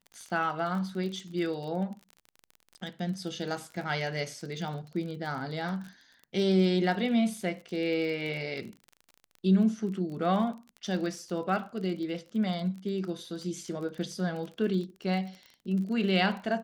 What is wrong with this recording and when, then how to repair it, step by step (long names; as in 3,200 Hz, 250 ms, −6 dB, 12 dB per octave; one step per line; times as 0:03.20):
surface crackle 30 per second −37 dBFS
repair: click removal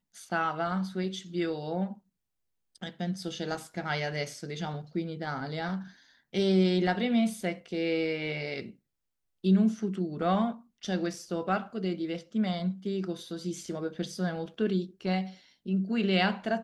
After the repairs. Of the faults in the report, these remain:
none of them is left